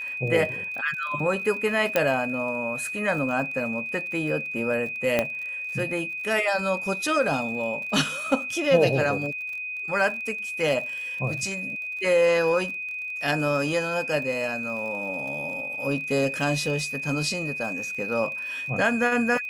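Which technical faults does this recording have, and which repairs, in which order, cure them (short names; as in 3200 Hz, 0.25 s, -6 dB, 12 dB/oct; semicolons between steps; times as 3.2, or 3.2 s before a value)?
crackle 40/s -34 dBFS
tone 2500 Hz -30 dBFS
1.96 pop -7 dBFS
5.19 pop -8 dBFS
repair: de-click; notch 2500 Hz, Q 30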